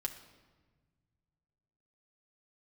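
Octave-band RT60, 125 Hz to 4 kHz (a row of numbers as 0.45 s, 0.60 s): 2.9 s, 2.2 s, 1.5 s, 1.3 s, 1.1 s, 1.0 s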